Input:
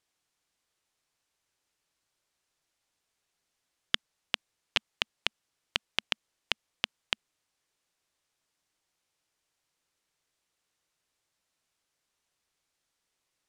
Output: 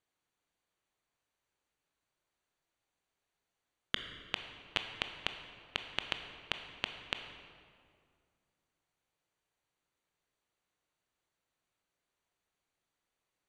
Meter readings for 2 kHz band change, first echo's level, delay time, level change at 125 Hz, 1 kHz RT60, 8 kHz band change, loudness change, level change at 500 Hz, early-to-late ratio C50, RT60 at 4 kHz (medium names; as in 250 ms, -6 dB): -4.0 dB, no echo, no echo, -0.5 dB, 2.0 s, -9.0 dB, -5.5 dB, -1.0 dB, 7.5 dB, 1.4 s